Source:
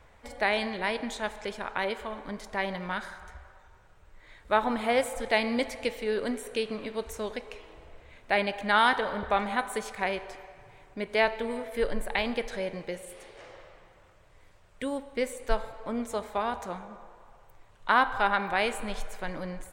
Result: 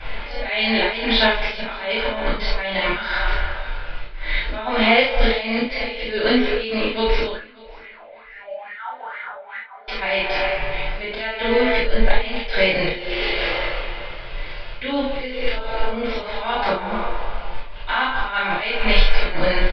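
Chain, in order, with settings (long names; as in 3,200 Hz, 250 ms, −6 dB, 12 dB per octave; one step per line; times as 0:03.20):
parametric band 2,900 Hz +11.5 dB 1.5 octaves
hum removal 90.53 Hz, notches 10
downward compressor 12 to 1, threshold −34 dBFS, peak gain reduction 21.5 dB
volume swells 237 ms
0:07.31–0:09.88: LFO wah 2.3 Hz 560–2,100 Hz, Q 10
double-tracking delay 31 ms −2.5 dB
repeating echo 587 ms, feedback 23%, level −24 dB
convolution reverb, pre-delay 3 ms, DRR −10.5 dB
downsampling to 11,025 Hz
level +6 dB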